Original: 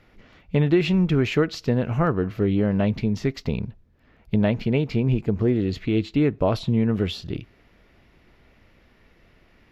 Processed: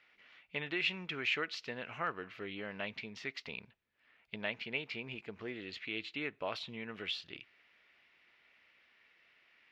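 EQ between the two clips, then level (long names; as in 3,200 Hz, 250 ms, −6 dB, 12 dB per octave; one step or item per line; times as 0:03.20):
resonant band-pass 2,500 Hz, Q 1.4
−2.0 dB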